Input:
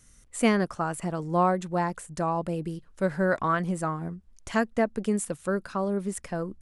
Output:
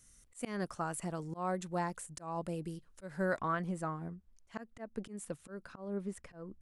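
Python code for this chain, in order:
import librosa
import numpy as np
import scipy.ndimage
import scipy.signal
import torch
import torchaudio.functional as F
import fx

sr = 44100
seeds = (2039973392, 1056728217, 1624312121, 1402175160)

y = fx.auto_swell(x, sr, attack_ms=206.0)
y = fx.high_shelf(y, sr, hz=4500.0, db=fx.steps((0.0, 7.0), (3.38, -3.5), (5.67, -10.0)))
y = y * librosa.db_to_amplitude(-8.5)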